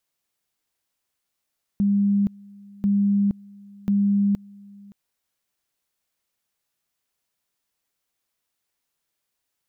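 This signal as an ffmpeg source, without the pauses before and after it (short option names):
-f lavfi -i "aevalsrc='pow(10,(-16.5-25.5*gte(mod(t,1.04),0.47))/20)*sin(2*PI*201*t)':d=3.12:s=44100"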